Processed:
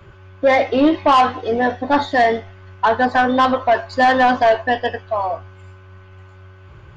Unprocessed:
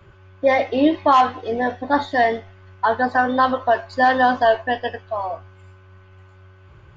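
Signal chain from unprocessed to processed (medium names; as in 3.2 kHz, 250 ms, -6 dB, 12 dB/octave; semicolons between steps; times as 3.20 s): saturation -12 dBFS, distortion -14 dB; trim +5 dB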